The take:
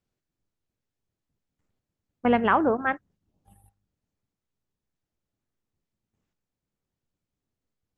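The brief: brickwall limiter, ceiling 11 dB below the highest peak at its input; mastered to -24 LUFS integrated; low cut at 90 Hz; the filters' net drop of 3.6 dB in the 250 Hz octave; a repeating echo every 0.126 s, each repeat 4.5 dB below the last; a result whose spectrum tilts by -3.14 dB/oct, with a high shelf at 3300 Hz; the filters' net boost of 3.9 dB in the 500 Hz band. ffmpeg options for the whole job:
-af "highpass=90,equalizer=f=250:t=o:g=-5.5,equalizer=f=500:t=o:g=5.5,highshelf=f=3.3k:g=5.5,alimiter=limit=-17.5dB:level=0:latency=1,aecho=1:1:126|252|378|504|630|756|882|1008|1134:0.596|0.357|0.214|0.129|0.0772|0.0463|0.0278|0.0167|0.01,volume=3.5dB"

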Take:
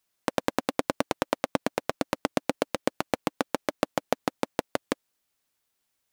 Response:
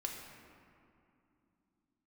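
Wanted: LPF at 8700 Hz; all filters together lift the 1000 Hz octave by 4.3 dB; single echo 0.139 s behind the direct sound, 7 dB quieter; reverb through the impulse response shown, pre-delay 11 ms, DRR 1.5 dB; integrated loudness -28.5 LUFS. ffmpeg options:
-filter_complex "[0:a]lowpass=8.7k,equalizer=f=1k:t=o:g=5.5,aecho=1:1:139:0.447,asplit=2[a][b];[1:a]atrim=start_sample=2205,adelay=11[c];[b][c]afir=irnorm=-1:irlink=0,volume=-1.5dB[d];[a][d]amix=inputs=2:normalize=0,volume=-2.5dB"

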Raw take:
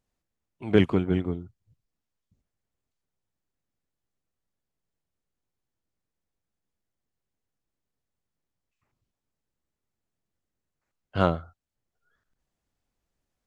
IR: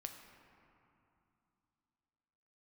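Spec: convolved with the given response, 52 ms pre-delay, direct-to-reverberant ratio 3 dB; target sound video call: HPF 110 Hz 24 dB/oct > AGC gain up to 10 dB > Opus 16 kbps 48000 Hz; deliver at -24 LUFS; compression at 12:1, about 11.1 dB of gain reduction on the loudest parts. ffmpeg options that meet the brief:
-filter_complex "[0:a]acompressor=threshold=-24dB:ratio=12,asplit=2[a][b];[1:a]atrim=start_sample=2205,adelay=52[c];[b][c]afir=irnorm=-1:irlink=0,volume=0.5dB[d];[a][d]amix=inputs=2:normalize=0,highpass=f=110:w=0.5412,highpass=f=110:w=1.3066,dynaudnorm=m=10dB,volume=9.5dB" -ar 48000 -c:a libopus -b:a 16k

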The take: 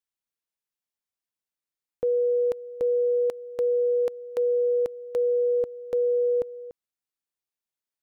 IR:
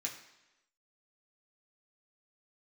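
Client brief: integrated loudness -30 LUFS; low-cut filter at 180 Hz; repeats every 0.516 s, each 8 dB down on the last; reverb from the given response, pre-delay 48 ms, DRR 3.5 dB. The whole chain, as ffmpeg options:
-filter_complex "[0:a]highpass=180,aecho=1:1:516|1032|1548|2064|2580:0.398|0.159|0.0637|0.0255|0.0102,asplit=2[a][b];[1:a]atrim=start_sample=2205,adelay=48[c];[b][c]afir=irnorm=-1:irlink=0,volume=-4dB[d];[a][d]amix=inputs=2:normalize=0,volume=-7.5dB"

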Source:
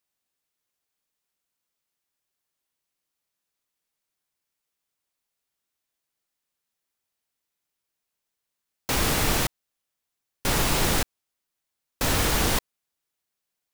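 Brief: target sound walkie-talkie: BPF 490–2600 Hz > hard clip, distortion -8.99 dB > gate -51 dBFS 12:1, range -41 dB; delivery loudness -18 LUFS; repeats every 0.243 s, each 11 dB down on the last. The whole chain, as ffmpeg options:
-af "highpass=490,lowpass=2.6k,aecho=1:1:243|486|729:0.282|0.0789|0.0221,asoftclip=type=hard:threshold=-30dB,agate=range=-41dB:threshold=-51dB:ratio=12,volume=16dB"

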